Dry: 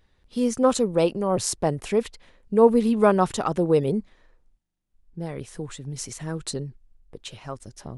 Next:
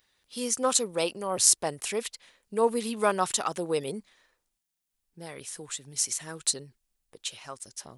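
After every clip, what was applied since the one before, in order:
spectral tilt +4 dB per octave
level −4 dB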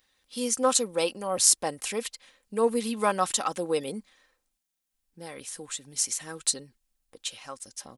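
comb filter 3.8 ms, depth 41%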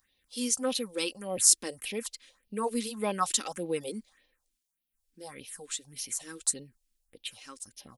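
all-pass phaser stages 4, 1.7 Hz, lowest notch 110–1,400 Hz
level −1 dB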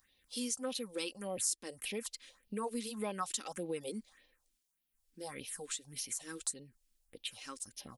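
downward compressor 2.5 to 1, threshold −40 dBFS, peak gain reduction 16 dB
level +1 dB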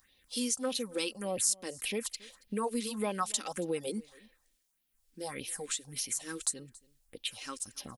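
single-tap delay 277 ms −23.5 dB
level +5 dB

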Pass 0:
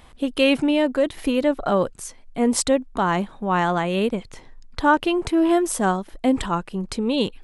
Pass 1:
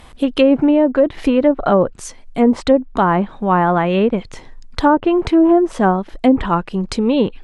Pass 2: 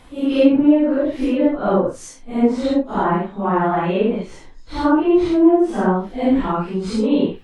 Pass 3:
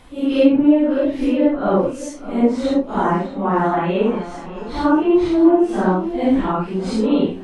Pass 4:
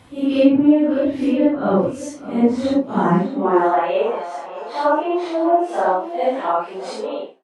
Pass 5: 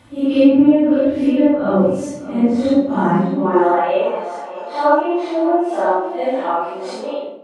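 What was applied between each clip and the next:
treble cut that deepens with the level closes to 780 Hz, closed at −14 dBFS; level +7 dB
random phases in long frames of 200 ms; parametric band 310 Hz +4.5 dB 0.84 octaves; level −4.5 dB
feedback echo with a long and a short gap by turns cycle 1,010 ms, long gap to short 1.5 to 1, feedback 30%, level −14.5 dB
fade-out on the ending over 0.57 s; high-pass filter sweep 96 Hz → 610 Hz, 0:02.73–0:03.89; level −1 dB
rectangular room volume 2,100 cubic metres, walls furnished, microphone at 2.5 metres; level −1.5 dB

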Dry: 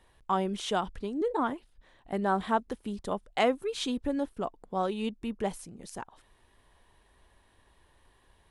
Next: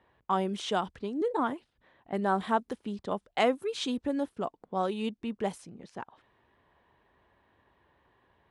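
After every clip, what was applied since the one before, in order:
high-pass filter 100 Hz 12 dB per octave
low-pass that shuts in the quiet parts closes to 2,200 Hz, open at −26.5 dBFS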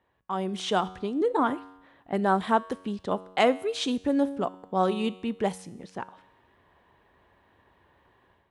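automatic gain control gain up to 10 dB
tuned comb filter 93 Hz, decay 0.93 s, harmonics all, mix 50%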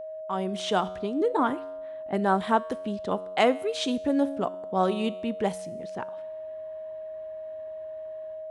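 steady tone 630 Hz −35 dBFS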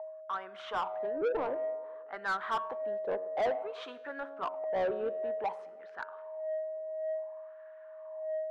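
LFO wah 0.55 Hz 490–1,500 Hz, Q 4.2
mid-hump overdrive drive 23 dB, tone 2,100 Hz, clips at −15.5 dBFS
feedback echo with a band-pass in the loop 104 ms, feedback 75%, band-pass 450 Hz, level −20 dB
level −7 dB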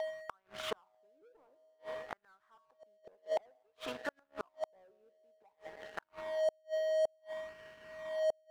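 dead-zone distortion −49.5 dBFS
gate with flip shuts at −33 dBFS, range −41 dB
level +9 dB

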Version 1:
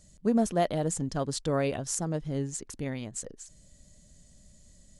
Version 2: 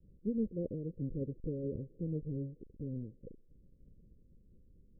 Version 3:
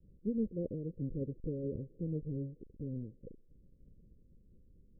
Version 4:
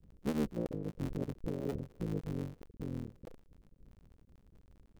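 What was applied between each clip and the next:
each half-wave held at its own peak; Butterworth low-pass 530 Hz 96 dB per octave; amplitude modulation by smooth noise, depth 60%; level −7 dB
no processing that can be heard
sub-harmonics by changed cycles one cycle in 3, muted; level +2 dB

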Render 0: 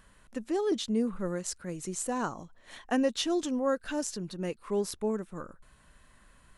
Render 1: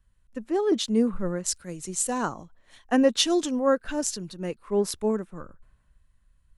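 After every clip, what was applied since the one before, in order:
multiband upward and downward expander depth 70%
level +4.5 dB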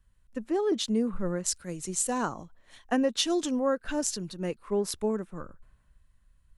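downward compressor 2.5 to 1, threshold −25 dBFS, peak gain reduction 7.5 dB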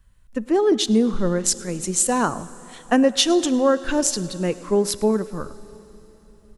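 slap from a distant wall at 18 metres, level −22 dB
convolution reverb RT60 3.8 s, pre-delay 13 ms, DRR 17 dB
level +9 dB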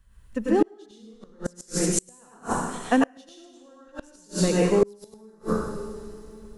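dense smooth reverb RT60 1 s, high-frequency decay 0.95×, pre-delay 85 ms, DRR −6.5 dB
gate with flip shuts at −5 dBFS, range −35 dB
level −3 dB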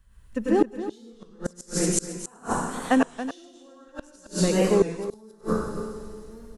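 single-tap delay 270 ms −12 dB
wow of a warped record 33 1/3 rpm, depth 100 cents

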